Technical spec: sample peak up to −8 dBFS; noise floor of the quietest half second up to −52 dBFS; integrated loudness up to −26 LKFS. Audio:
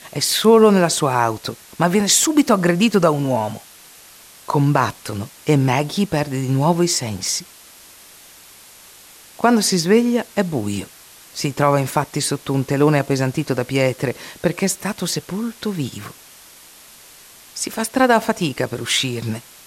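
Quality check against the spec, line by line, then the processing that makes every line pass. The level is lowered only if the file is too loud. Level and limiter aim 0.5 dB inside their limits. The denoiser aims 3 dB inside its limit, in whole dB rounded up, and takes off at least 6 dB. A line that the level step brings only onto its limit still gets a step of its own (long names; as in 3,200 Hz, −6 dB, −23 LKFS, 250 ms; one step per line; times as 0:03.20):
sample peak −2.5 dBFS: out of spec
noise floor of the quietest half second −44 dBFS: out of spec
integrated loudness −18.5 LKFS: out of spec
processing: broadband denoise 6 dB, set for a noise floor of −44 dBFS
level −8 dB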